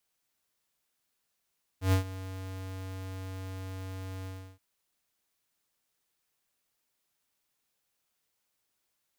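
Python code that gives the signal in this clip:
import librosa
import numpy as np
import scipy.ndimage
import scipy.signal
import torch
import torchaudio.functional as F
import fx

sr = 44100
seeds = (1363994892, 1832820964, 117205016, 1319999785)

y = fx.adsr_tone(sr, wave='square', hz=94.5, attack_ms=115.0, decay_ms=108.0, sustain_db=-17.0, held_s=2.45, release_ms=325.0, level_db=-22.5)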